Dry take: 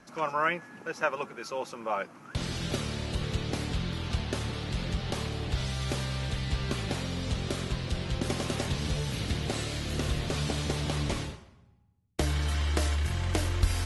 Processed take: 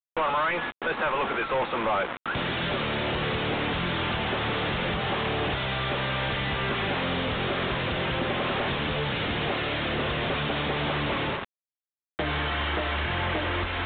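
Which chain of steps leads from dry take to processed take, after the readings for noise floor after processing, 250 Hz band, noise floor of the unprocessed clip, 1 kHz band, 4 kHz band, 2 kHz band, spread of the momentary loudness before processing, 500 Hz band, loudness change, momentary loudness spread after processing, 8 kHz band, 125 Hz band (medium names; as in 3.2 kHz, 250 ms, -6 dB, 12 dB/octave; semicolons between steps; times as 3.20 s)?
under -85 dBFS, +3.5 dB, -56 dBFS, +8.5 dB, +6.5 dB, +9.5 dB, 6 LU, +7.0 dB, +4.5 dB, 2 LU, under -40 dB, -1.5 dB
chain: gate with hold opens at -37 dBFS; compression 4:1, threshold -31 dBFS, peak gain reduction 11 dB; bit crusher 8-bit; overdrive pedal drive 33 dB, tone 2.2 kHz, clips at -17.5 dBFS; resampled via 8 kHz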